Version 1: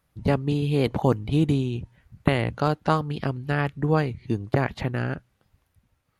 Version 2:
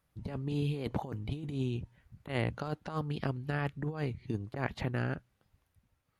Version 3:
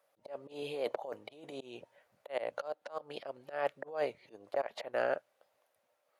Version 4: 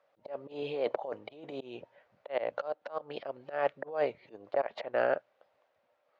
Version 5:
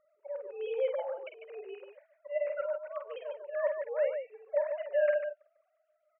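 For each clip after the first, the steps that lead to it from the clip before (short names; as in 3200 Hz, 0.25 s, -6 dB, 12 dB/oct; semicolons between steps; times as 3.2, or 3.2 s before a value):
negative-ratio compressor -24 dBFS, ratio -0.5; gain -8.5 dB
auto swell 0.194 s; resonant high-pass 580 Hz, resonance Q 4.9; gain +1 dB
air absorption 200 m; gain +4.5 dB
sine-wave speech; on a send: tapped delay 49/147 ms -6.5/-7 dB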